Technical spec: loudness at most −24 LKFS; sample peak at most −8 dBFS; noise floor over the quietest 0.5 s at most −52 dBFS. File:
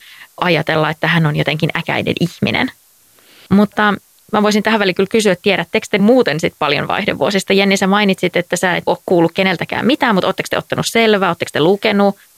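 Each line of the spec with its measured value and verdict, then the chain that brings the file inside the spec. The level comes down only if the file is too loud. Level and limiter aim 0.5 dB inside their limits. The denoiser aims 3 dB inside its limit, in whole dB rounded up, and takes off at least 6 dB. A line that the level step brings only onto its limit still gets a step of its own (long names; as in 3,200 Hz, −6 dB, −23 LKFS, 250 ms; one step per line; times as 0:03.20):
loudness −14.5 LKFS: out of spec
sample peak −2.5 dBFS: out of spec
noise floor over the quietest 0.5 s −50 dBFS: out of spec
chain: level −10 dB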